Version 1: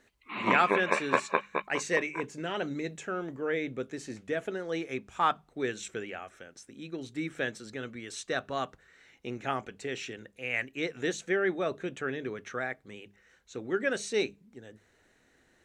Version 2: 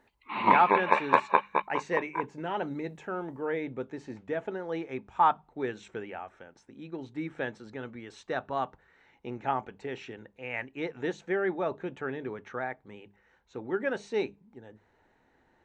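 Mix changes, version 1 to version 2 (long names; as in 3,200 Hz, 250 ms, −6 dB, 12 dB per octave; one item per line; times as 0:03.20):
speech: add head-to-tape spacing loss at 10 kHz 23 dB
master: add parametric band 890 Hz +12.5 dB 0.4 octaves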